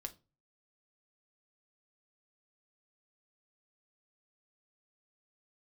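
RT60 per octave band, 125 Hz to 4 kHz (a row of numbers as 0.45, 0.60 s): 0.55, 0.40, 0.30, 0.25, 0.20, 0.25 s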